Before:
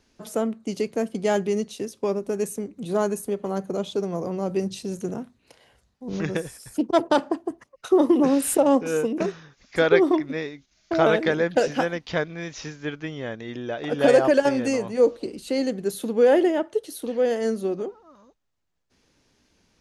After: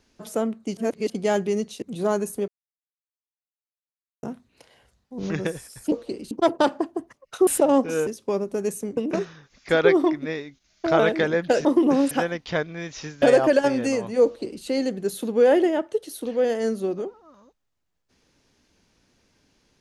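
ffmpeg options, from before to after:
-filter_complex "[0:a]asplit=14[s0][s1][s2][s3][s4][s5][s6][s7][s8][s9][s10][s11][s12][s13];[s0]atrim=end=0.772[s14];[s1]atrim=start=0.768:end=1.102,asetpts=PTS-STARTPTS,areverse[s15];[s2]atrim=start=1.098:end=1.822[s16];[s3]atrim=start=2.718:end=3.38,asetpts=PTS-STARTPTS,afade=t=out:st=0.658:d=0.004:c=hsin[s17];[s4]atrim=start=3.38:end=5.13,asetpts=PTS-STARTPTS,volume=0[s18];[s5]atrim=start=5.13:end=6.822,asetpts=PTS-STARTPTS,afade=t=in:d=0.004:c=hsin[s19];[s6]atrim=start=15.058:end=15.452[s20];[s7]atrim=start=6.818:end=7.982[s21];[s8]atrim=start=8.438:end=9.042[s22];[s9]atrim=start=1.818:end=2.722[s23];[s10]atrim=start=9.038:end=11.722[s24];[s11]atrim=start=7.978:end=8.442[s25];[s12]atrim=start=11.718:end=12.832[s26];[s13]atrim=start=14.028[s27];[s14][s15]acrossfade=d=0.004:c1=hsin:c2=hsin[s28];[s28][s16]acrossfade=d=0.004:c1=hsin:c2=hsin[s29];[s17][s18][s19]concat=n=3:v=0:a=1[s30];[s29][s30]acrossfade=d=0.004:c1=hsin:c2=hsin[s31];[s31][s20]acrossfade=d=0.004:c1=hsin:c2=hsin[s32];[s32][s21]acrossfade=d=0.004:c1=hsin:c2=hsin[s33];[s33][s22]acrossfade=d=0.004:c1=hsin:c2=hsin[s34];[s34][s23]acrossfade=d=0.004:c1=hsin:c2=hsin[s35];[s35][s24]acrossfade=d=0.004:c1=hsin:c2=hsin[s36];[s36][s25]acrossfade=d=0.004:c1=hsin:c2=hsin[s37];[s37][s26]acrossfade=d=0.004:c1=hsin:c2=hsin[s38];[s38][s27]acrossfade=d=0.004:c1=hsin:c2=hsin"

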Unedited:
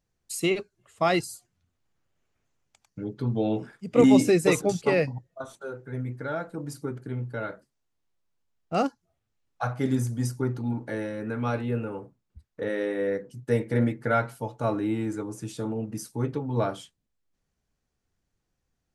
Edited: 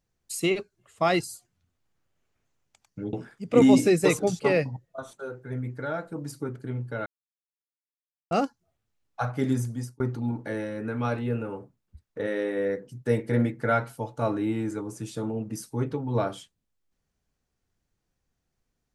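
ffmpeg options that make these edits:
-filter_complex "[0:a]asplit=5[s0][s1][s2][s3][s4];[s0]atrim=end=3.132[s5];[s1]atrim=start=3.548:end=7.48,asetpts=PTS-STARTPTS,afade=t=out:st=3.928:d=0.004:c=hsin[s6];[s2]atrim=start=7.48:end=8.73,asetpts=PTS-STARTPTS,volume=0[s7];[s3]atrim=start=8.73:end=10.42,asetpts=PTS-STARTPTS,afade=t=in:d=0.004:c=hsin,afade=t=out:st=1.15:d=0.54:c=qsin[s8];[s4]atrim=start=10.42,asetpts=PTS-STARTPTS,afade=t=in:d=0.004:c=hsin[s9];[s6][s7][s8][s9]concat=n=4:v=0:a=1[s10];[s5][s10]acrossfade=d=0.004:c1=hsin:c2=hsin"

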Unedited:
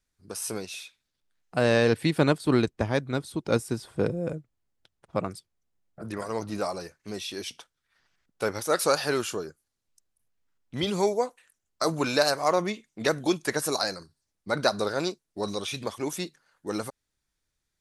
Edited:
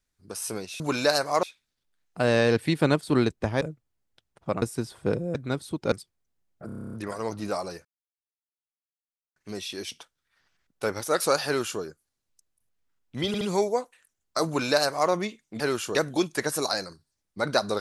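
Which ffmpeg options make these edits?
-filter_complex "[0:a]asplit=21[s0][s1][s2][s3][s4][s5][s6][s7][s8][s9][s10][s11][s12][s13][s14][s15][s16][s17][s18][s19][s20];[s0]atrim=end=0.802[s21];[s1]atrim=start=11.918:end=12.552[s22];[s2]atrim=start=0.798:end=2.982[s23];[s3]atrim=start=4.278:end=5.292[s24];[s4]atrim=start=3.548:end=4.282[s25];[s5]atrim=start=2.978:end=3.552[s26];[s6]atrim=start=5.288:end=6.062[s27];[s7]atrim=start=6.028:end=6.062[s28];[s8]atrim=start=6.028:end=6.062[s29];[s9]atrim=start=6.028:end=6.062[s30];[s10]atrim=start=6.028:end=6.062[s31];[s11]atrim=start=6.028:end=6.062[s32];[s12]atrim=start=6.028:end=6.062[s33];[s13]atrim=start=6.028:end=6.062[s34];[s14]atrim=start=6.028:end=6.062[s35];[s15]atrim=start=6.028:end=6.95,asetpts=PTS-STARTPTS,afade=t=out:st=0.918:d=0.004:c=hsin,apad=pad_dur=1.51[s36];[s16]atrim=start=6.95:end=10.932,asetpts=PTS-STARTPTS,afade=t=in:d=0.004:c=hsin[s37];[s17]atrim=start=10.858:end=10.932[s38];[s18]atrim=start=10.858:end=13.052[s39];[s19]atrim=start=9.048:end=9.402[s40];[s20]atrim=start=13.048[s41];[s21][s22]acrossfade=d=0.004:c1=hsin:c2=hsin[s42];[s42][s23]acrossfade=d=0.004:c1=hsin:c2=hsin[s43];[s43][s24]acrossfade=d=0.004:c1=hsin:c2=hsin[s44];[s44][s25]acrossfade=d=0.004:c1=hsin:c2=hsin[s45];[s45][s26]acrossfade=d=0.004:c1=hsin:c2=hsin[s46];[s46][s27]acrossfade=d=0.004:c1=hsin:c2=hsin[s47];[s47][s28]acrossfade=d=0.004:c1=hsin:c2=hsin[s48];[s48][s29]acrossfade=d=0.004:c1=hsin:c2=hsin[s49];[s49][s30]acrossfade=d=0.004:c1=hsin:c2=hsin[s50];[s50][s31]acrossfade=d=0.004:c1=hsin:c2=hsin[s51];[s51][s32]acrossfade=d=0.004:c1=hsin:c2=hsin[s52];[s52][s33]acrossfade=d=0.004:c1=hsin:c2=hsin[s53];[s53][s34]acrossfade=d=0.004:c1=hsin:c2=hsin[s54];[s54][s35]acrossfade=d=0.004:c1=hsin:c2=hsin[s55];[s36][s37]concat=n=2:v=0:a=1[s56];[s55][s56]acrossfade=d=0.004:c1=hsin:c2=hsin[s57];[s57][s38]acrossfade=d=0.004:c1=hsin:c2=hsin[s58];[s58][s39]acrossfade=d=0.004:c1=hsin:c2=hsin[s59];[s59][s40]acrossfade=d=0.004:c1=hsin:c2=hsin[s60];[s60][s41]acrossfade=d=0.004:c1=hsin:c2=hsin"

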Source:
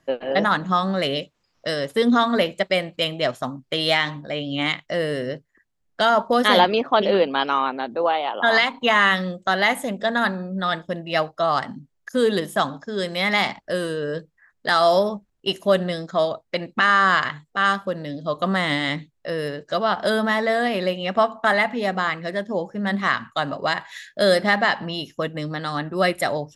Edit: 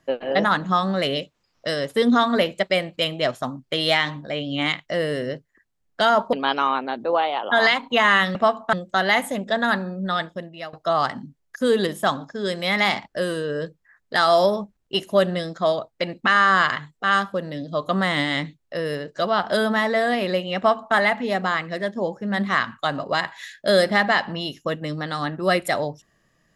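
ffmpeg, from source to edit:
-filter_complex "[0:a]asplit=5[s0][s1][s2][s3][s4];[s0]atrim=end=6.332[s5];[s1]atrim=start=7.238:end=9.262[s6];[s2]atrim=start=21.098:end=21.482[s7];[s3]atrim=start=9.258:end=11.26,asetpts=PTS-STARTPTS,afade=t=out:st=1.372:d=0.63:silence=0.1[s8];[s4]atrim=start=11.26,asetpts=PTS-STARTPTS,afade=t=in:d=0.004:c=hsin:silence=0.1[s9];[s5][s6]acrossfade=d=0.004:c1=hsin:c2=hsin[s10];[s10][s7]acrossfade=d=0.004:c1=hsin:c2=hsin[s11];[s8][s9]concat=n=2:v=0:a=1[s12];[s11][s12]acrossfade=d=0.004:c1=hsin:c2=hsin"

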